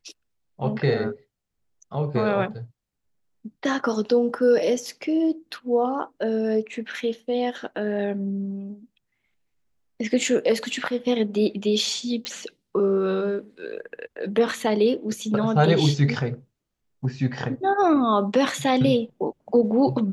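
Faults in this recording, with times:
12.25 pop -14 dBFS

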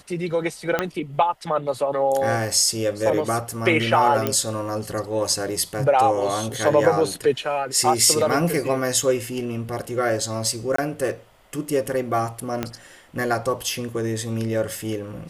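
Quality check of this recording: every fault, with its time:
0.79 pop -7 dBFS
4.27 pop -7 dBFS
10.76–10.78 gap 24 ms
12.63 pop -10 dBFS

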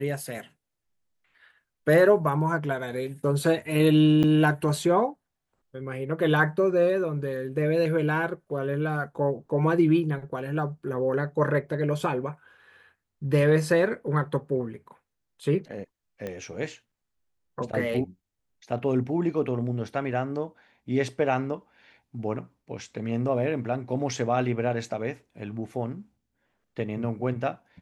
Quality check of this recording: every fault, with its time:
4.23–4.24 gap 8.4 ms
16.27 pop -21 dBFS

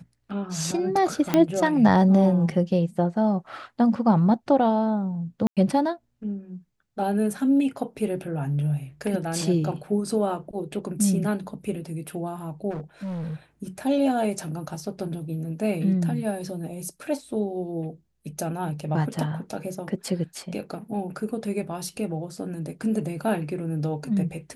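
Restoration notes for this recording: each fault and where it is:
1.34 pop -7 dBFS
5.47–5.57 gap 97 ms
12.7–13.36 clipped -29 dBFS

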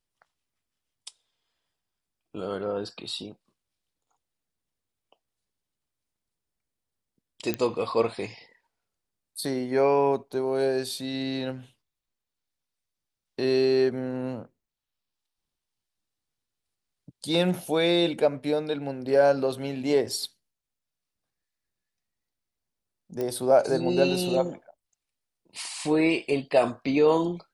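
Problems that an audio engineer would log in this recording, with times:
7.54 pop -12 dBFS
23.21 pop -18 dBFS

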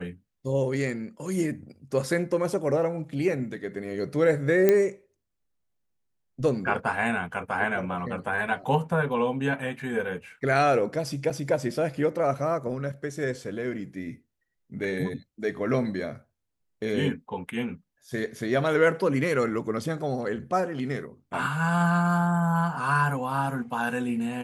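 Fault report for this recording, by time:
4.69 pop -8 dBFS
11.3–11.31 gap 5.3 ms

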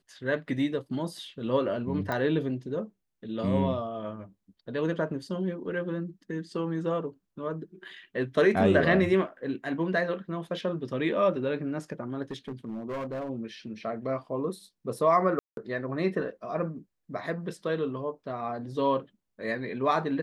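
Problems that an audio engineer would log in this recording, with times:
2.12 pop -18 dBFS
12.31–13.29 clipped -30.5 dBFS
15.39–15.57 gap 0.182 s

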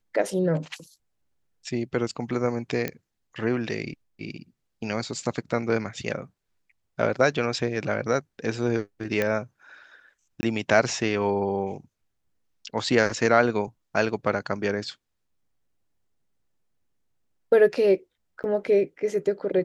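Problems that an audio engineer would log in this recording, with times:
2.88 pop -13 dBFS
9.22 pop -11 dBFS
10.41–10.43 gap 20 ms
18.43–18.44 gap 9.5 ms

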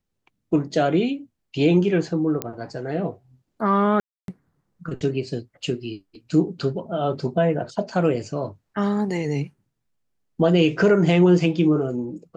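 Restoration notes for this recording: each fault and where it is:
2.42 pop -9 dBFS
4–4.28 gap 0.282 s

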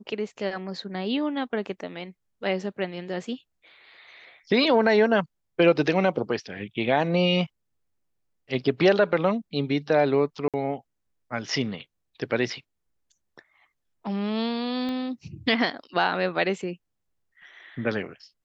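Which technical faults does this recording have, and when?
10.48–10.54 gap 57 ms
14.89 pop -22 dBFS

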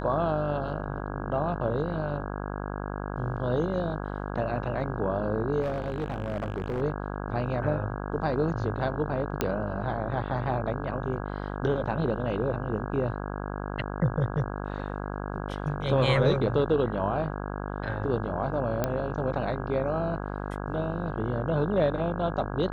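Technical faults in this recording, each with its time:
buzz 50 Hz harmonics 33 -34 dBFS
5.61–6.82 clipped -25.5 dBFS
9.41 pop -11 dBFS
18.84 pop -12 dBFS

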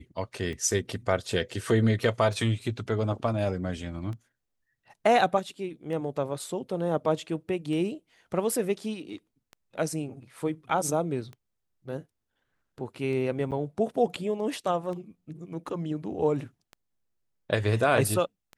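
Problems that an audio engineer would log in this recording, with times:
tick 33 1/3 rpm -28 dBFS
13.51–13.52 gap 7.8 ms

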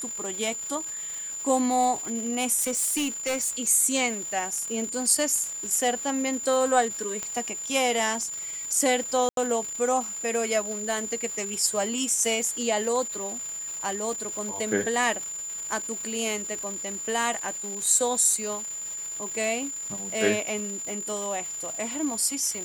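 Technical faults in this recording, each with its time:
crackle 540/s -34 dBFS
tone 7100 Hz -32 dBFS
2.6–3.5 clipped -23 dBFS
7.23 pop -16 dBFS
9.29–9.37 gap 82 ms

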